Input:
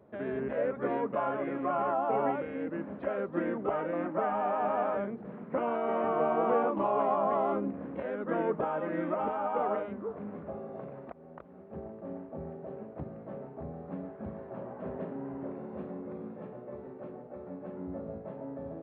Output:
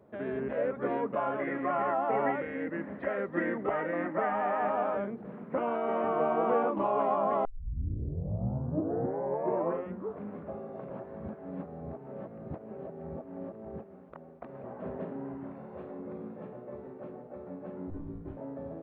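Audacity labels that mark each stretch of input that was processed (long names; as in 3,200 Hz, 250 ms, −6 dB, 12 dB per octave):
1.390000	4.700000	parametric band 1,900 Hz +13.5 dB 0.3 octaves
7.450000	7.450000	tape start 2.71 s
10.900000	14.640000	reverse
15.340000	15.980000	parametric band 630 Hz → 150 Hz −13.5 dB 0.55 octaves
17.900000	18.370000	frequency shifter −270 Hz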